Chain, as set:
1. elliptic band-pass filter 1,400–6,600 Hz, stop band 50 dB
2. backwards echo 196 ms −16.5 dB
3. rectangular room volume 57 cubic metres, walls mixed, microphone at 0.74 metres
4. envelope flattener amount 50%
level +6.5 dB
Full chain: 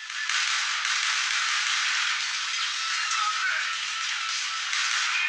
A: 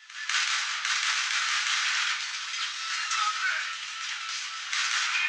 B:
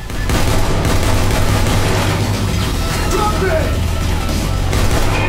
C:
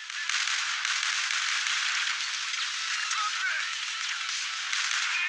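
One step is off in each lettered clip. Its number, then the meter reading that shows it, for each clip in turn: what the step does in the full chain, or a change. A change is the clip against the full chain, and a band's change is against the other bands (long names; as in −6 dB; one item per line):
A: 4, change in momentary loudness spread +4 LU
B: 1, 1 kHz band +8.5 dB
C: 3, change in crest factor +2.0 dB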